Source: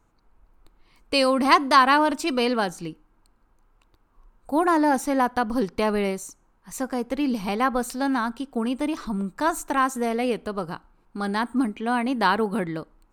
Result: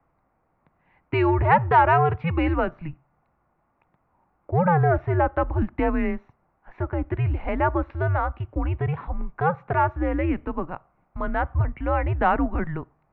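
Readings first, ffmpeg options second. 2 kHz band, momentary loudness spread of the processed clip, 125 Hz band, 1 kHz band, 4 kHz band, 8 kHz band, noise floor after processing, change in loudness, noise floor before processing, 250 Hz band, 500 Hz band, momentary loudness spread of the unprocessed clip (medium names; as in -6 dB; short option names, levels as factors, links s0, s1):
-2.0 dB, 13 LU, +15.0 dB, -0.5 dB, under -15 dB, under -40 dB, -70 dBFS, 0.0 dB, -64 dBFS, -3.5 dB, 0.0 dB, 13 LU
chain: -af "acontrast=79,highpass=f=160:t=q:w=0.5412,highpass=f=160:t=q:w=1.307,lowpass=f=2500:t=q:w=0.5176,lowpass=f=2500:t=q:w=0.7071,lowpass=f=2500:t=q:w=1.932,afreqshift=-170,volume=0.531"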